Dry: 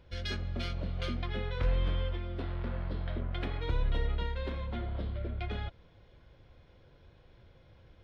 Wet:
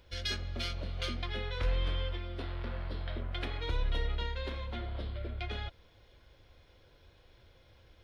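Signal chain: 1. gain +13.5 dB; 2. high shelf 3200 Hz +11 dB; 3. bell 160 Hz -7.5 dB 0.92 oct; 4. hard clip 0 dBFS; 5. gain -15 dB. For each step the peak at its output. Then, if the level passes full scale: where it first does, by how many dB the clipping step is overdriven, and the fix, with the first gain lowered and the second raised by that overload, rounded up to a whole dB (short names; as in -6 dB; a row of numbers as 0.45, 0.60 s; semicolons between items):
-6.0, -5.5, -5.5, -5.5, -20.5 dBFS; no overload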